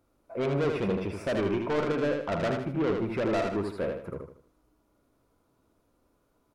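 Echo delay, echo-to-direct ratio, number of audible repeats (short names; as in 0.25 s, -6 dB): 78 ms, -4.0 dB, 4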